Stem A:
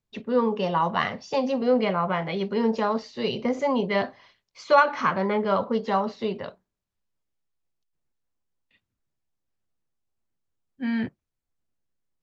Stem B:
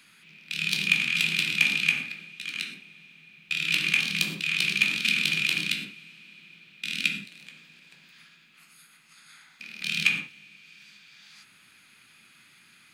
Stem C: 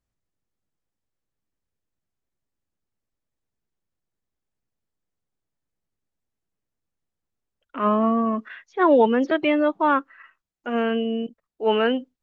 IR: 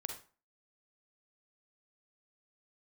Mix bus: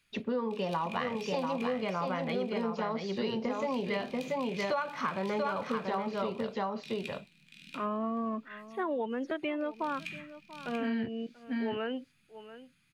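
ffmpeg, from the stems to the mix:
-filter_complex "[0:a]volume=1dB,asplit=2[a][b];[b]volume=-4.5dB[c];[1:a]asubboost=boost=6.5:cutoff=190,volume=-17dB,asplit=2[d][e];[e]volume=-5.5dB[f];[2:a]volume=-8dB,asplit=2[g][h];[h]volume=-21dB[i];[c][f][i]amix=inputs=3:normalize=0,aecho=0:1:686:1[j];[a][d][g][j]amix=inputs=4:normalize=0,acompressor=threshold=-30dB:ratio=6"

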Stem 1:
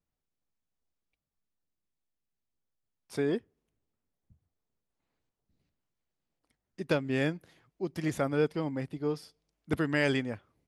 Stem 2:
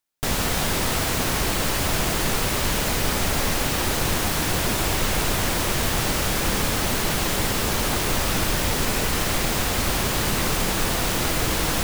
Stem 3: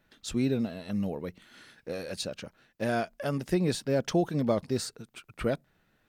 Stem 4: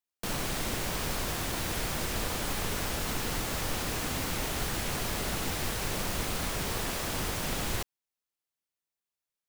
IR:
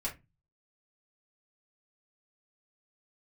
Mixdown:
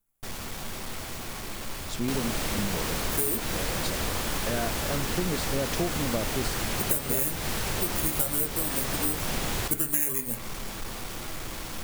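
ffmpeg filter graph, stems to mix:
-filter_complex "[0:a]acrusher=samples=10:mix=1:aa=0.000001,aexciter=amount=15.6:drive=5.3:freq=7.4k,volume=-3dB,asplit=3[a][b][c];[b]volume=-3dB[d];[1:a]asoftclip=type=tanh:threshold=-25dB,volume=-10.5dB,asplit=2[e][f];[f]volume=-10.5dB[g];[2:a]adelay=1650,volume=-1.5dB[h];[3:a]adelay=1850,volume=2.5dB[i];[c]apad=whole_len=521916[j];[e][j]sidechaincompress=threshold=-26dB:ratio=8:attack=12:release=321[k];[4:a]atrim=start_sample=2205[l];[d][g]amix=inputs=2:normalize=0[m];[m][l]afir=irnorm=-1:irlink=0[n];[a][k][h][i][n]amix=inputs=5:normalize=0,acompressor=threshold=-23dB:ratio=4"

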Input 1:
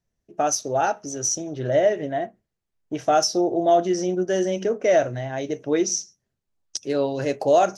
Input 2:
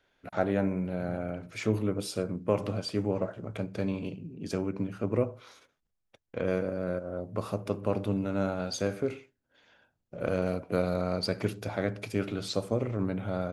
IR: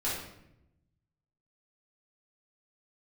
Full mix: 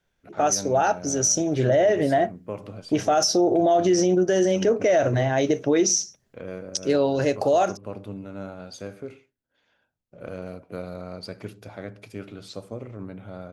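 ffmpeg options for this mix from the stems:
-filter_complex "[0:a]dynaudnorm=f=130:g=17:m=7dB,volume=2.5dB[a];[1:a]volume=-6.5dB[b];[a][b]amix=inputs=2:normalize=0,alimiter=limit=-12dB:level=0:latency=1:release=54"

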